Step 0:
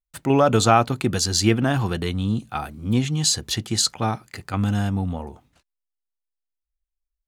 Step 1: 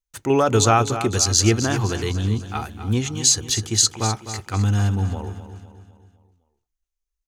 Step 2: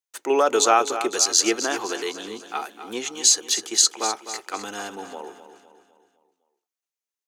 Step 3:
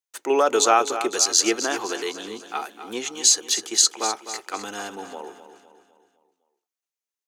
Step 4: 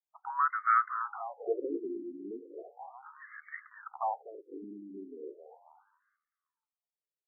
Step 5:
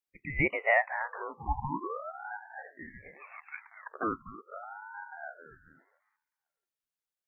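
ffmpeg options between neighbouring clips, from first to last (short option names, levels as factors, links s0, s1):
-filter_complex "[0:a]equalizer=f=100:t=o:w=0.33:g=6,equalizer=f=160:t=o:w=0.33:g=-11,equalizer=f=250:t=o:w=0.33:g=-3,equalizer=f=400:t=o:w=0.33:g=4,equalizer=f=630:t=o:w=0.33:g=-5,equalizer=f=6300:t=o:w=0.33:g=9,asplit=2[s0][s1];[s1]aecho=0:1:254|508|762|1016|1270:0.266|0.125|0.0588|0.0276|0.013[s2];[s0][s2]amix=inputs=2:normalize=0"
-af "highpass=f=350:w=0.5412,highpass=f=350:w=1.3066"
-af anull
-af "afftfilt=real='re*between(b*sr/1024,270*pow(1600/270,0.5+0.5*sin(2*PI*0.36*pts/sr))/1.41,270*pow(1600/270,0.5+0.5*sin(2*PI*0.36*pts/sr))*1.41)':imag='im*between(b*sr/1024,270*pow(1600/270,0.5+0.5*sin(2*PI*0.36*pts/sr))/1.41,270*pow(1600/270,0.5+0.5*sin(2*PI*0.36*pts/sr))*1.41)':win_size=1024:overlap=0.75,volume=0.708"
-af "aeval=exprs='val(0)*sin(2*PI*760*n/s+760*0.6/0.4*sin(2*PI*0.4*n/s))':c=same,volume=1.5"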